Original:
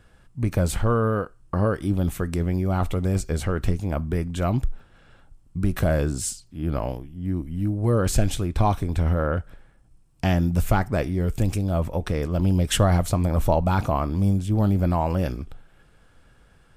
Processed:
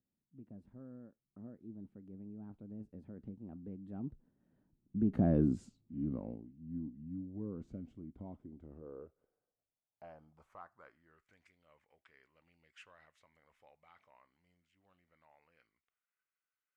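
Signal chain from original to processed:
source passing by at 0:05.45, 38 m/s, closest 9.4 metres
band-pass filter sweep 240 Hz → 2,000 Hz, 0:08.28–0:11.55
level +3.5 dB

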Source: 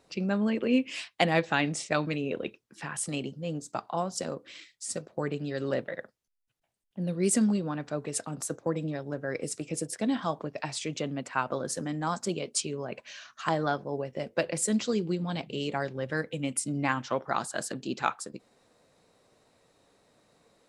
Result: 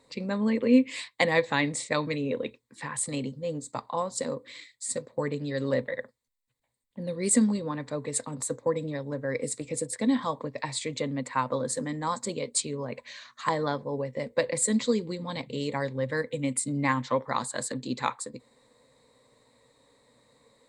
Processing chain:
EQ curve with evenly spaced ripples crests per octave 1, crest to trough 11 dB

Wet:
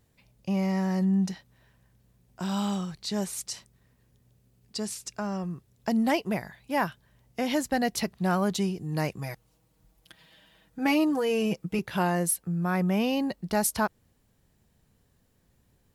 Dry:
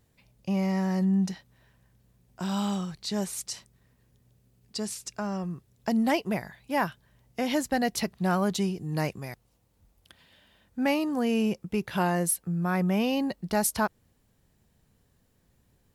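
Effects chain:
0:09.18–0:11.79: comb filter 6.3 ms, depth 80%

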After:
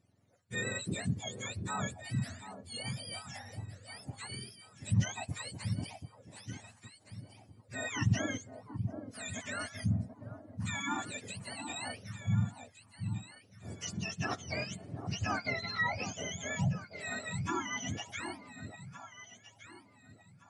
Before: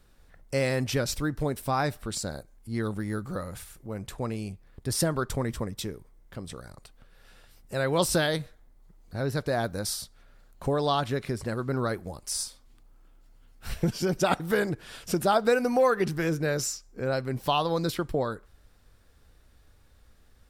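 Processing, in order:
frequency axis turned over on the octave scale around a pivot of 1,000 Hz
delay that swaps between a low-pass and a high-pass 733 ms, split 1,000 Hz, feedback 51%, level −7 dB
downsampling to 22,050 Hz
level −8.5 dB

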